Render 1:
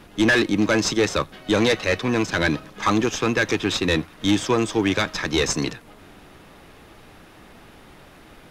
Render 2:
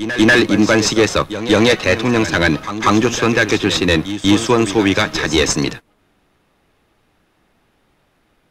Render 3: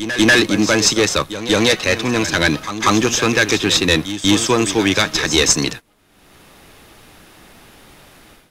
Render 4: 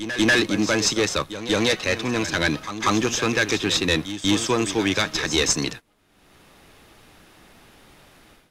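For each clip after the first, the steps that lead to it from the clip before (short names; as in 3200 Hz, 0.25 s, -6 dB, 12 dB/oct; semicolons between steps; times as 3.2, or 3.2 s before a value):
gate -34 dBFS, range -20 dB; reverse echo 0.191 s -11.5 dB; gain +6.5 dB
high shelf 3500 Hz +10 dB; AGC gain up to 15 dB; gain -1 dB
high shelf 9900 Hz -5 dB; gain -6 dB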